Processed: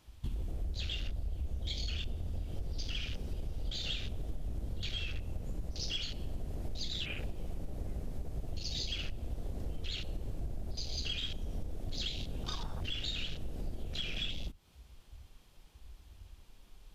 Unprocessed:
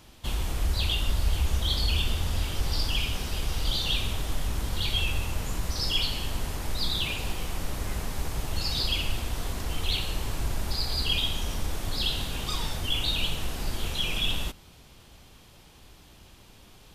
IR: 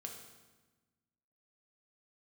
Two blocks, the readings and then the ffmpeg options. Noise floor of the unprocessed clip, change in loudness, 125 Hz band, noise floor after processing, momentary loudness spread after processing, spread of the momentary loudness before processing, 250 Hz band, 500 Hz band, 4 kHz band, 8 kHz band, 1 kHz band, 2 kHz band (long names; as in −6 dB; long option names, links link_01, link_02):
−53 dBFS, −10.5 dB, −9.0 dB, −59 dBFS, 8 LU, 8 LU, −8.5 dB, −9.5 dB, −11.0 dB, −13.5 dB, −16.0 dB, −11.5 dB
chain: -af "afwtdn=0.02,acompressor=threshold=-39dB:ratio=6,volume=4.5dB"